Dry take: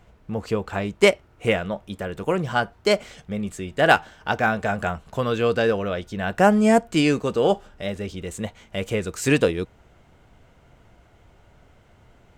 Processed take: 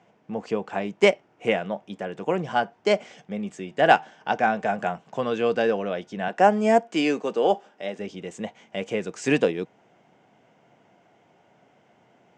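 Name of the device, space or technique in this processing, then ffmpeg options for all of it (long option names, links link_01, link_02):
television speaker: -filter_complex "[0:a]highpass=frequency=160:width=0.5412,highpass=frequency=160:width=1.3066,equalizer=frequency=760:width_type=q:width=4:gain=5,equalizer=frequency=1300:width_type=q:width=4:gain=-5,equalizer=frequency=4100:width_type=q:width=4:gain=-8,lowpass=frequency=6700:width=0.5412,lowpass=frequency=6700:width=1.3066,asettb=1/sr,asplit=3[link_01][link_02][link_03];[link_01]atrim=end=6.284[link_04];[link_02]atrim=start=6.28:end=7.99,asetpts=PTS-STARTPTS,afade=type=in:duration=0.004:curve=qsin,afade=type=out:start_time=1.706:duration=0.004:curve=qsin,highpass=250[link_05];[link_03]atrim=start=7.986[link_06];[link_04][link_05]acrossfade=duration=0.004:curve1=hsin:curve2=qsin[link_07];[link_07][link_06]acrossfade=duration=0.004:curve1=qsin:curve2=hsin,volume=-2dB"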